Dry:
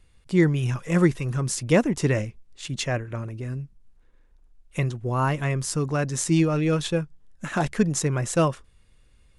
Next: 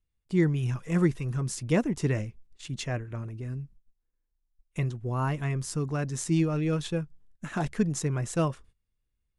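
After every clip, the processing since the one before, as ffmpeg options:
ffmpeg -i in.wav -af "agate=range=-19dB:threshold=-47dB:ratio=16:detection=peak,lowshelf=frequency=350:gain=4.5,bandreject=frequency=550:width=12,volume=-7.5dB" out.wav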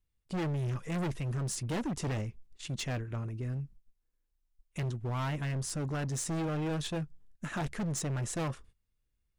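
ffmpeg -i in.wav -af "volume=31dB,asoftclip=hard,volume=-31dB" out.wav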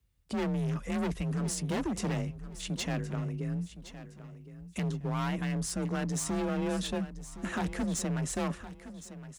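ffmpeg -i in.wav -filter_complex "[0:a]asplit=2[link_01][link_02];[link_02]acompressor=threshold=-45dB:ratio=6,volume=2dB[link_03];[link_01][link_03]amix=inputs=2:normalize=0,afreqshift=34,aecho=1:1:1065|2130|3195:0.2|0.0599|0.018,volume=-1dB" out.wav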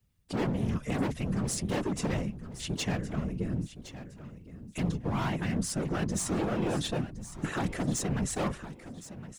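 ffmpeg -i in.wav -af "afftfilt=real='hypot(re,im)*cos(2*PI*random(0))':imag='hypot(re,im)*sin(2*PI*random(1))':win_size=512:overlap=0.75,volume=7.5dB" out.wav

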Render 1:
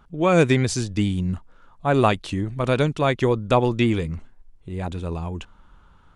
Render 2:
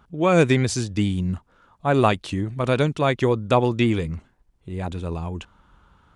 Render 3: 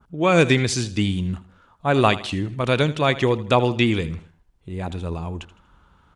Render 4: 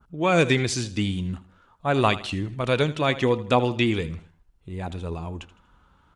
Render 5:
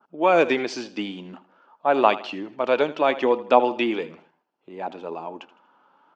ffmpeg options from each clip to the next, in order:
ffmpeg -i in.wav -af "highpass=44" out.wav
ffmpeg -i in.wav -af "adynamicequalizer=threshold=0.0112:dfrequency=3200:dqfactor=0.76:tfrequency=3200:tqfactor=0.76:attack=5:release=100:ratio=0.375:range=3:mode=boostabove:tftype=bell,aecho=1:1:80|160|240:0.15|0.0584|0.0228" out.wav
ffmpeg -i in.wav -af "flanger=delay=0.7:depth=3.4:regen=78:speed=0.44:shape=sinusoidal,volume=1.5dB" out.wav
ffmpeg -i in.wav -af "highpass=frequency=260:width=0.5412,highpass=frequency=260:width=1.3066,equalizer=frequency=610:width_type=q:width=4:gain=5,equalizer=frequency=860:width_type=q:width=4:gain=7,equalizer=frequency=2000:width_type=q:width=4:gain=-4,equalizer=frequency=3800:width_type=q:width=4:gain=-9,lowpass=frequency=4800:width=0.5412,lowpass=frequency=4800:width=1.3066,volume=1dB" out.wav

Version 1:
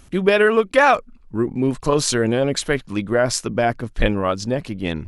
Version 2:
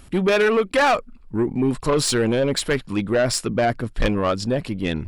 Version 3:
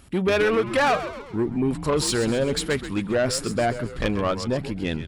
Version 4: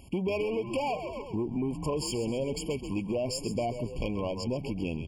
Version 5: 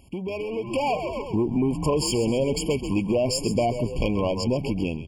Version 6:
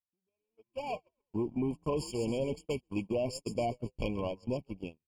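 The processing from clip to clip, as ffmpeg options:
ffmpeg -i in.wav -af "bandreject=frequency=6200:width=6.4,asoftclip=type=tanh:threshold=-15dB,volume=2dB" out.wav
ffmpeg -i in.wav -filter_complex "[0:a]highpass=43,asplit=2[link_01][link_02];[link_02]asplit=6[link_03][link_04][link_05][link_06][link_07][link_08];[link_03]adelay=132,afreqshift=-100,volume=-11.5dB[link_09];[link_04]adelay=264,afreqshift=-200,volume=-17.2dB[link_10];[link_05]adelay=396,afreqshift=-300,volume=-22.9dB[link_11];[link_06]adelay=528,afreqshift=-400,volume=-28.5dB[link_12];[link_07]adelay=660,afreqshift=-500,volume=-34.2dB[link_13];[link_08]adelay=792,afreqshift=-600,volume=-39.9dB[link_14];[link_09][link_10][link_11][link_12][link_13][link_14]amix=inputs=6:normalize=0[link_15];[link_01][link_15]amix=inputs=2:normalize=0,volume=-3dB" out.wav
ffmpeg -i in.wav -af "acompressor=threshold=-29dB:ratio=4,afftfilt=real='re*eq(mod(floor(b*sr/1024/1100),2),0)':imag='im*eq(mod(floor(b*sr/1024/1100),2),0)':win_size=1024:overlap=0.75" out.wav
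ffmpeg -i in.wav -af "dynaudnorm=framelen=480:gausssize=3:maxgain=10dB,volume=-2dB" out.wav
ffmpeg -i in.wav -af "agate=range=-49dB:threshold=-23dB:ratio=16:detection=peak,volume=-9dB" out.wav

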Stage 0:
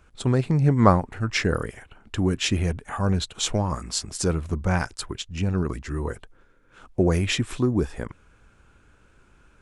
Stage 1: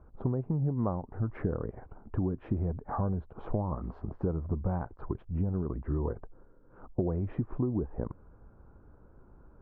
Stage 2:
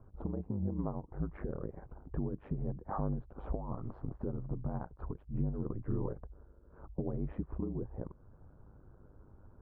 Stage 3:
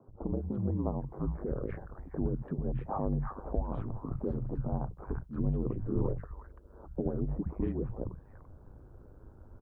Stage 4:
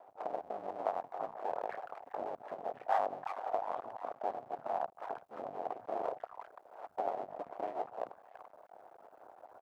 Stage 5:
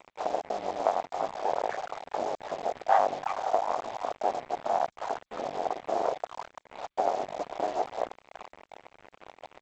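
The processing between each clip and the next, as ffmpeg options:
ffmpeg -i in.wav -af "lowpass=frequency=1000:width=0.5412,lowpass=frequency=1000:width=1.3066,acompressor=threshold=-29dB:ratio=8,volume=2dB" out.wav
ffmpeg -i in.wav -af "highshelf=frequency=2200:gain=-9,alimiter=level_in=0.5dB:limit=-24dB:level=0:latency=1:release=386,volume=-0.5dB,aeval=exprs='val(0)*sin(2*PI*50*n/s)':channel_layout=same,volume=1dB" out.wav
ffmpeg -i in.wav -filter_complex "[0:a]acrossover=split=160|1200[link_01][link_02][link_03];[link_01]adelay=70[link_04];[link_03]adelay=340[link_05];[link_04][link_02][link_05]amix=inputs=3:normalize=0,volume=5.5dB" out.wav
ffmpeg -i in.wav -af "acompressor=threshold=-41dB:ratio=1.5,aeval=exprs='max(val(0),0)':channel_layout=same,highpass=frequency=710:width_type=q:width=4.9,volume=5.5dB" out.wav
ffmpeg -i in.wav -af "acrusher=bits=7:mix=0:aa=0.5,volume=8.5dB" -ar 16000 -c:a g722 out.g722

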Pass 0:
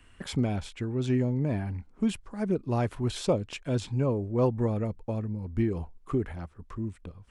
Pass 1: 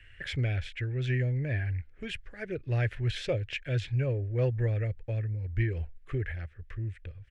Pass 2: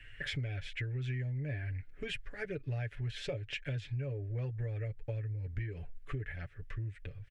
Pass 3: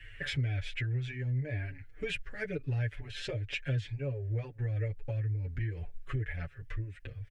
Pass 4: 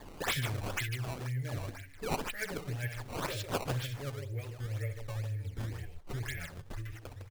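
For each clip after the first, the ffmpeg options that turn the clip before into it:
ffmpeg -i in.wav -af "firequalizer=gain_entry='entry(120,0);entry(200,-21);entry(330,-11);entry(530,-6);entry(990,-22);entry(1700,7);entry(4300,-7);entry(8500,-16)':delay=0.05:min_phase=1,volume=3dB" out.wav
ffmpeg -i in.wav -af "aecho=1:1:7:0.64,acompressor=threshold=-35dB:ratio=6" out.wav
ffmpeg -i in.wav -filter_complex "[0:a]asplit=2[link_01][link_02];[link_02]adelay=6,afreqshift=-2.1[link_03];[link_01][link_03]amix=inputs=2:normalize=1,volume=6dB" out.wav
ffmpeg -i in.wav -af "crystalizer=i=7:c=0,aecho=1:1:64.14|151.6:0.355|0.447,acrusher=samples=15:mix=1:aa=0.000001:lfo=1:lforange=24:lforate=2,volume=-5.5dB" out.wav

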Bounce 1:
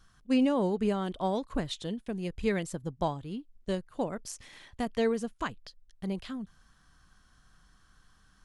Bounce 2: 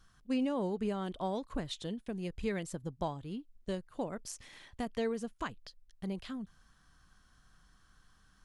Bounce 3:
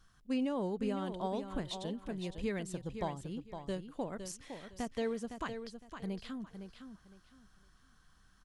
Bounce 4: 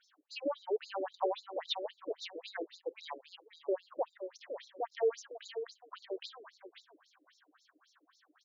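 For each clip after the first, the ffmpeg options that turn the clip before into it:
ffmpeg -i in.wav -af "acompressor=threshold=-34dB:ratio=1.5,volume=-2.5dB" out.wav
ffmpeg -i in.wav -af "aecho=1:1:510|1020|1530:0.376|0.0902|0.0216,volume=-1.5dB" out.wav
ffmpeg -i in.wav -af "aeval=exprs='val(0)+0.00224*(sin(2*PI*60*n/s)+sin(2*PI*2*60*n/s)/2+sin(2*PI*3*60*n/s)/3+sin(2*PI*4*60*n/s)/4+sin(2*PI*5*60*n/s)/5)':channel_layout=same,afftfilt=real='re*between(b*sr/1024,420*pow(5300/420,0.5+0.5*sin(2*PI*3.7*pts/sr))/1.41,420*pow(5300/420,0.5+0.5*sin(2*PI*3.7*pts/sr))*1.41)':imag='im*between(b*sr/1024,420*pow(5300/420,0.5+0.5*sin(2*PI*3.7*pts/sr))/1.41,420*pow(5300/420,0.5+0.5*sin(2*PI*3.7*pts/sr))*1.41)':win_size=1024:overlap=0.75,volume=8.5dB" out.wav

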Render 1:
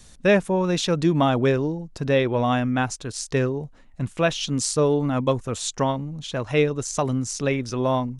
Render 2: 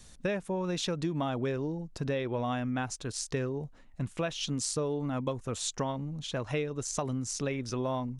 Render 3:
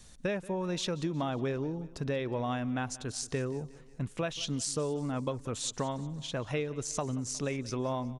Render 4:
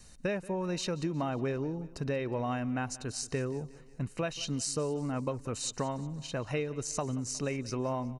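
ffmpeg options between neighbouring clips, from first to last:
ffmpeg -i in.wav -af "acompressor=threshold=-24dB:ratio=6,volume=-4.5dB" out.wav
ffmpeg -i in.wav -af "aecho=1:1:181|362|543|724:0.106|0.054|0.0276|0.0141,volume=-1dB" out.wav
ffmpeg -i in.wav -af "asuperstop=centerf=3400:order=20:qfactor=7.4" out.wav

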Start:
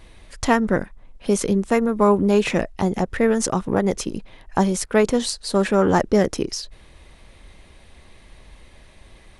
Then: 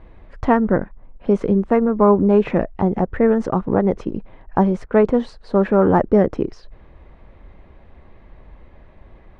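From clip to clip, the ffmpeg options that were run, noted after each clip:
ffmpeg -i in.wav -af "lowpass=1300,volume=3dB" out.wav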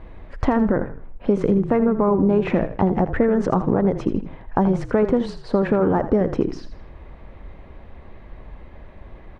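ffmpeg -i in.wav -filter_complex "[0:a]alimiter=limit=-8dB:level=0:latency=1,acompressor=threshold=-18dB:ratio=6,asplit=5[link_01][link_02][link_03][link_04][link_05];[link_02]adelay=81,afreqshift=-32,volume=-11.5dB[link_06];[link_03]adelay=162,afreqshift=-64,volume=-20.4dB[link_07];[link_04]adelay=243,afreqshift=-96,volume=-29.2dB[link_08];[link_05]adelay=324,afreqshift=-128,volume=-38.1dB[link_09];[link_01][link_06][link_07][link_08][link_09]amix=inputs=5:normalize=0,volume=4dB" out.wav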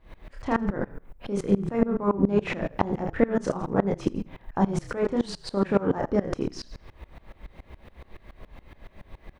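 ffmpeg -i in.wav -filter_complex "[0:a]crystalizer=i=4.5:c=0,asplit=2[link_01][link_02];[link_02]adelay=30,volume=-7.5dB[link_03];[link_01][link_03]amix=inputs=2:normalize=0,aeval=exprs='val(0)*pow(10,-23*if(lt(mod(-7.1*n/s,1),2*abs(-7.1)/1000),1-mod(-7.1*n/s,1)/(2*abs(-7.1)/1000),(mod(-7.1*n/s,1)-2*abs(-7.1)/1000)/(1-2*abs(-7.1)/1000))/20)':channel_layout=same" out.wav

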